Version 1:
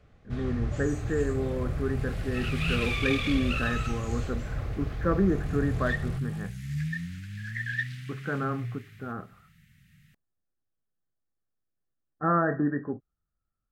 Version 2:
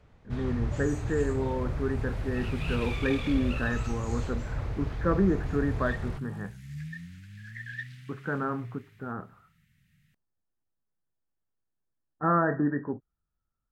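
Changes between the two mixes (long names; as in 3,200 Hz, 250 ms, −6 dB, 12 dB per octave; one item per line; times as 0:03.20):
second sound −7.5 dB
master: remove Butterworth band-reject 930 Hz, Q 6.3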